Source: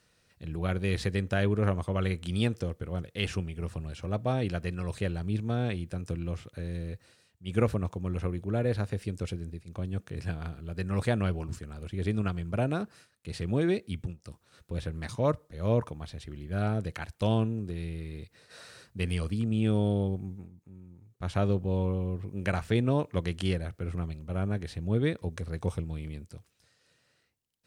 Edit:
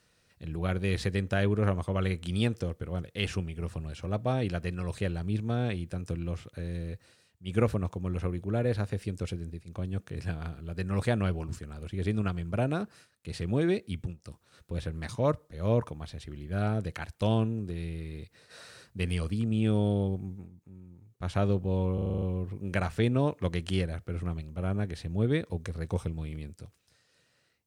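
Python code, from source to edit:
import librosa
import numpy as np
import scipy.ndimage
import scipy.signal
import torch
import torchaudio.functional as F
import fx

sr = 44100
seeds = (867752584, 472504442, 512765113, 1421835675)

y = fx.edit(x, sr, fx.stutter(start_s=21.94, slice_s=0.04, count=8), tone=tone)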